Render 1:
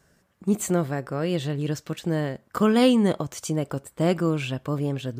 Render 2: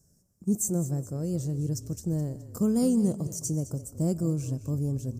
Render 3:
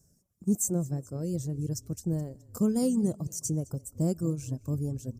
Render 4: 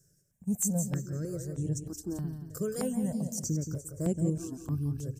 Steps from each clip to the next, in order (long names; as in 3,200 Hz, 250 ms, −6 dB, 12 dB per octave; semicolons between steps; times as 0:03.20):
drawn EQ curve 140 Hz 0 dB, 550 Hz −11 dB, 1,800 Hz −27 dB, 3,500 Hz −28 dB, 5,700 Hz +2 dB; echo with shifted repeats 211 ms, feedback 46%, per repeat −33 Hz, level −15 dB; convolution reverb RT60 0.40 s, pre-delay 105 ms, DRR 19 dB
reverb reduction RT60 1.1 s
parametric band 1,600 Hz +11.5 dB 0.49 octaves; on a send: repeating echo 174 ms, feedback 39%, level −8 dB; on the sum: step-sequenced phaser 3.2 Hz 230–4,800 Hz